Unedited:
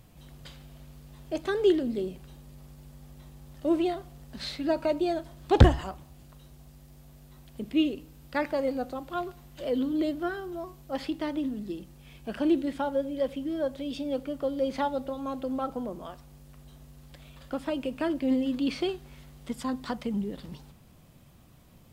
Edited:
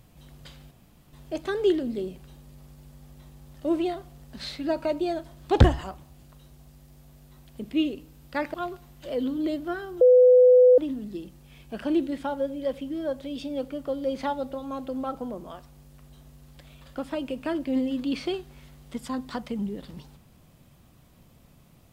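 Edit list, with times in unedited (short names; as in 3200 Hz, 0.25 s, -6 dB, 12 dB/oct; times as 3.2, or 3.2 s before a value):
0.71–1.13 room tone
8.54–9.09 cut
10.56–11.33 bleep 501 Hz -11.5 dBFS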